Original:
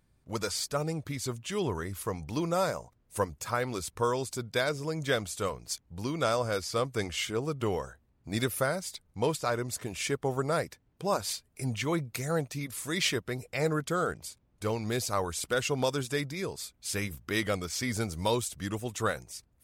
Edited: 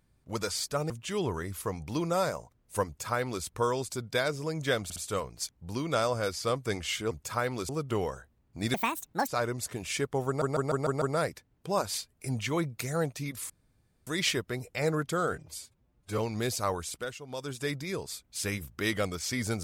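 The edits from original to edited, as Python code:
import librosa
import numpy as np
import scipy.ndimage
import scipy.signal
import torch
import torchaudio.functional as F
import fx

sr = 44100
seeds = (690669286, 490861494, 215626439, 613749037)

y = fx.edit(x, sr, fx.cut(start_s=0.9, length_s=0.41),
    fx.duplicate(start_s=3.27, length_s=0.58, to_s=7.4),
    fx.stutter(start_s=5.25, slice_s=0.06, count=3),
    fx.speed_span(start_s=8.45, length_s=0.93, speed=1.73),
    fx.stutter(start_s=10.37, slice_s=0.15, count=6),
    fx.insert_room_tone(at_s=12.85, length_s=0.57),
    fx.stretch_span(start_s=14.11, length_s=0.57, factor=1.5),
    fx.fade_down_up(start_s=15.2, length_s=1.06, db=-15.0, fade_s=0.49), tone=tone)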